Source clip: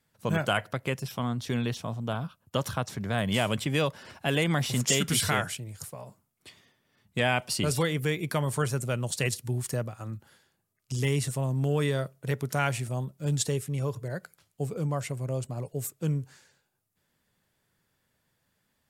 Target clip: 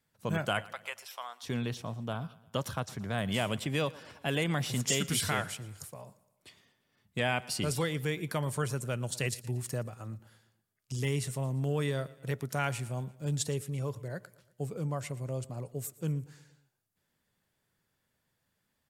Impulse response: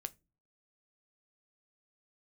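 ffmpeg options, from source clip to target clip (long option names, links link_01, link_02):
-filter_complex "[0:a]asettb=1/sr,asplit=3[link_01][link_02][link_03];[link_01]atrim=end=0.694[link_04];[link_02]atrim=start=0.69:end=1.43,asetpts=PTS-STARTPTS,afade=type=in:duration=0.004:curve=qsin,afade=type=out:start_time=0.736:duration=0.004:curve=qsin,highpass=frequency=680:width=0.5412,highpass=frequency=680:width=1.3066[link_05];[link_03]atrim=start=1.426[link_06];[link_04][link_05]acrossfade=duration=0.004:curve1=hsin:curve2=qsin[link_07];[link_07][link_06]acrossfade=duration=0.004:curve1=qsin:curve2=hsin,aecho=1:1:116|232|348|464:0.0891|0.0472|0.025|0.0133,volume=-4.5dB"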